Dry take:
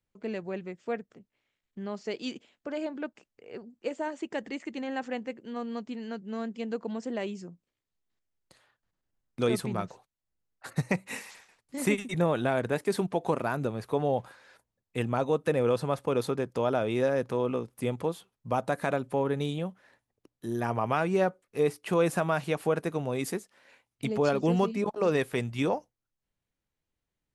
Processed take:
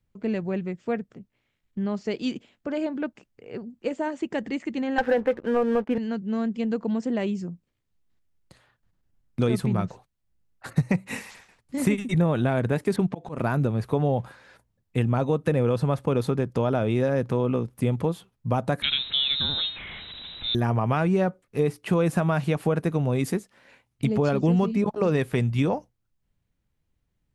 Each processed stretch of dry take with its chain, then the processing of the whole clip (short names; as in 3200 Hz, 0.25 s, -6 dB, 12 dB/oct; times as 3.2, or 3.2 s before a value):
4.98–5.98 speaker cabinet 280–2700 Hz, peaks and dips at 500 Hz +10 dB, 840 Hz +7 dB, 1600 Hz +10 dB + sample leveller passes 2
12.96–13.38 low-pass opened by the level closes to 1800 Hz, open at -23.5 dBFS + auto swell 0.195 s
18.82–20.55 zero-crossing step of -37 dBFS + inverted band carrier 3900 Hz
whole clip: tone controls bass +10 dB, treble -3 dB; compressor 2.5:1, threshold -24 dBFS; gain +4 dB